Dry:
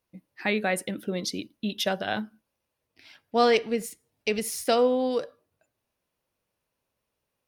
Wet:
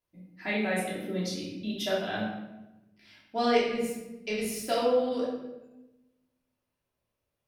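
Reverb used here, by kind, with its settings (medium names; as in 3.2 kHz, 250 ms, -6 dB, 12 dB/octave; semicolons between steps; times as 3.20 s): simulated room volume 450 m³, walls mixed, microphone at 3 m; trim -11 dB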